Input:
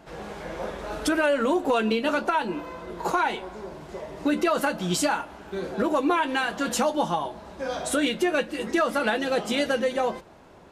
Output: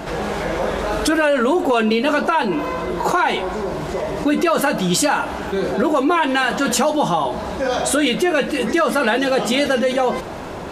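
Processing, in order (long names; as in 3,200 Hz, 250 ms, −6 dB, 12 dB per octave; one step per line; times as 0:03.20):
envelope flattener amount 50%
level +5 dB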